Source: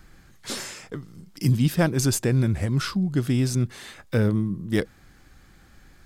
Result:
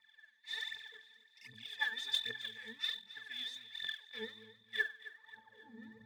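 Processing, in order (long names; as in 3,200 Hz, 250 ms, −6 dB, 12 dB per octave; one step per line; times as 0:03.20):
high-pass filter sweep 2,500 Hz → 180 Hz, 0:04.95–0:05.92
resonances in every octave A, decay 0.32 s
phase shifter 1.3 Hz, delay 4.6 ms, feedback 76%
feedback echo with a high-pass in the loop 266 ms, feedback 45%, high-pass 350 Hz, level −16 dB
level +12 dB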